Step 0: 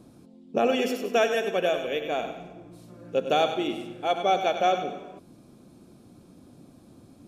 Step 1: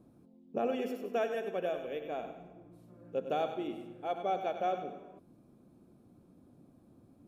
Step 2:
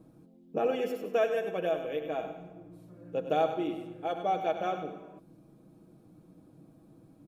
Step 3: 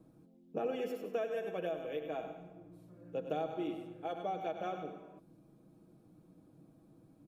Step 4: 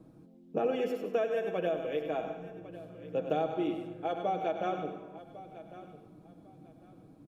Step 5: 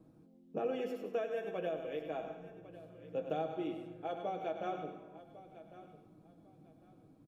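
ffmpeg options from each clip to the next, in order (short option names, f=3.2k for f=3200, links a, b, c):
-af "equalizer=f=5.4k:t=o:w=2.6:g=-11.5,volume=-8.5dB"
-af "aecho=1:1:6.3:0.55,volume=3dB"
-filter_complex "[0:a]acrossover=split=400[a][b];[b]acompressor=threshold=-31dB:ratio=6[c];[a][c]amix=inputs=2:normalize=0,volume=-5dB"
-af "highshelf=f=8.2k:g=-8.5,aecho=1:1:1101|2202:0.15|0.0359,volume=6dB"
-filter_complex "[0:a]asplit=2[a][b];[b]adelay=19,volume=-11dB[c];[a][c]amix=inputs=2:normalize=0,volume=-6.5dB"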